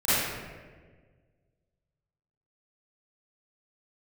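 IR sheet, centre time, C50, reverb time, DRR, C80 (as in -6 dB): 128 ms, -8.0 dB, 1.5 s, -17.0 dB, -1.5 dB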